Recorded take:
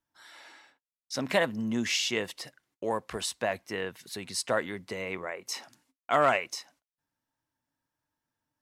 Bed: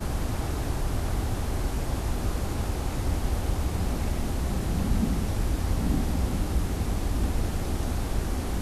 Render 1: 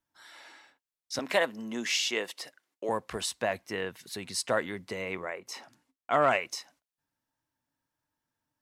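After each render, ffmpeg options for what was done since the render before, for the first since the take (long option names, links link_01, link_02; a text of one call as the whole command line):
ffmpeg -i in.wav -filter_complex "[0:a]asettb=1/sr,asplit=3[link_01][link_02][link_03];[link_01]atrim=end=1.194[link_04];[link_02]atrim=start=1.19:end=2.89,asetpts=PTS-STARTPTS,afade=type=in:duration=0.004:curve=qsin,afade=type=out:start_time=1.696:duration=0.004:curve=qsin,highpass=320[link_05];[link_03]atrim=start=2.886[link_06];[link_04][link_05]acrossfade=duration=0.004:curve1=hsin:curve2=qsin[link_07];[link_07][link_06]acrossfade=duration=0.004:curve1=qsin:curve2=hsin,asettb=1/sr,asplit=3[link_08][link_09][link_10];[link_08]atrim=end=5.394[link_11];[link_09]atrim=start=5.39:end=6.31,asetpts=PTS-STARTPTS,afade=type=in:duration=0.004:curve=qsin,afade=type=out:start_time=0.916:duration=0.004:curve=qsin,highshelf=frequency=2800:gain=-7.5[link_12];[link_10]atrim=start=6.306[link_13];[link_11][link_12]acrossfade=duration=0.004:curve1=hsin:curve2=qsin[link_14];[link_14][link_13]acrossfade=duration=0.004:curve1=qsin:curve2=hsin" out.wav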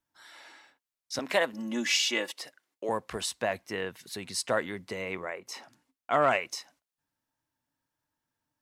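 ffmpeg -i in.wav -filter_complex "[0:a]asettb=1/sr,asplit=3[link_01][link_02][link_03];[link_01]atrim=end=1.534[link_04];[link_02]atrim=start=1.53:end=2.32,asetpts=PTS-STARTPTS,afade=type=in:duration=0.004:curve=qsin,afade=type=out:start_time=0.786:duration=0.004:curve=qsin,aecho=1:1:3.5:0.87,atrim=end_sample=34839[link_05];[link_03]atrim=start=2.316[link_06];[link_04][link_05]acrossfade=duration=0.004:curve1=hsin:curve2=qsin[link_07];[link_07][link_06]acrossfade=duration=0.004:curve1=qsin:curve2=hsin" out.wav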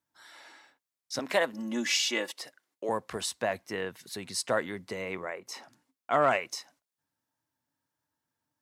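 ffmpeg -i in.wav -af "highpass=71,equalizer=frequency=2700:width_type=o:width=0.77:gain=-2.5" out.wav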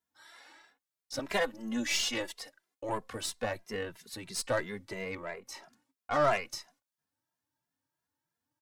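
ffmpeg -i in.wav -filter_complex "[0:a]aeval=exprs='0.251*(cos(1*acos(clip(val(0)/0.251,-1,1)))-cos(1*PI/2))+0.0141*(cos(8*acos(clip(val(0)/0.251,-1,1)))-cos(8*PI/2))':channel_layout=same,asplit=2[link_01][link_02];[link_02]adelay=2.5,afreqshift=3[link_03];[link_01][link_03]amix=inputs=2:normalize=1" out.wav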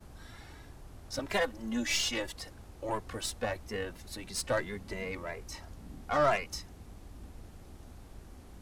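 ffmpeg -i in.wav -i bed.wav -filter_complex "[1:a]volume=-22dB[link_01];[0:a][link_01]amix=inputs=2:normalize=0" out.wav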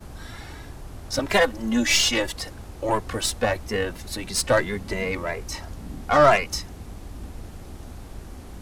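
ffmpeg -i in.wav -af "volume=11dB" out.wav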